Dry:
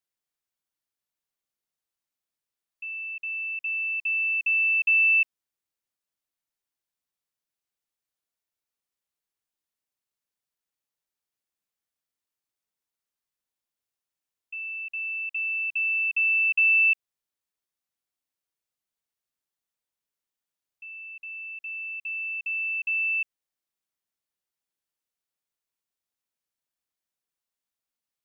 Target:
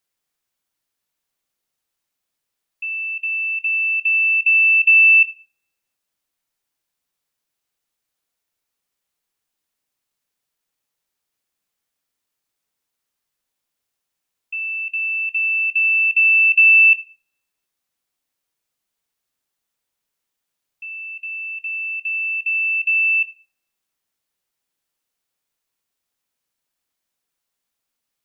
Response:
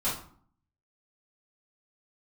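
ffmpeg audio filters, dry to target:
-filter_complex "[0:a]asplit=2[a][b];[b]equalizer=f=2.5k:w=1.5:g=6.5[c];[1:a]atrim=start_sample=2205[d];[c][d]afir=irnorm=-1:irlink=0,volume=-22.5dB[e];[a][e]amix=inputs=2:normalize=0,volume=8.5dB"

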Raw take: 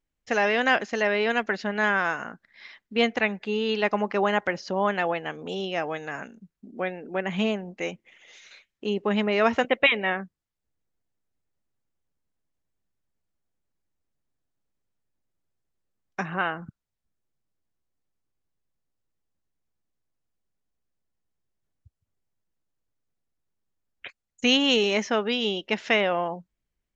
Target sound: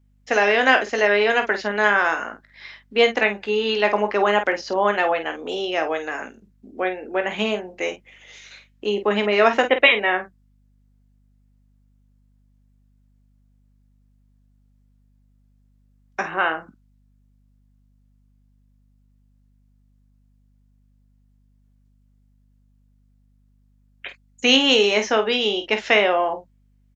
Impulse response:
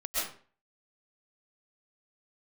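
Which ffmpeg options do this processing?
-af "highpass=f=260:w=0.5412,highpass=f=260:w=1.3066,aecho=1:1:19|49:0.335|0.335,aeval=exprs='val(0)+0.000708*(sin(2*PI*50*n/s)+sin(2*PI*2*50*n/s)/2+sin(2*PI*3*50*n/s)/3+sin(2*PI*4*50*n/s)/4+sin(2*PI*5*50*n/s)/5)':c=same,volume=5dB"

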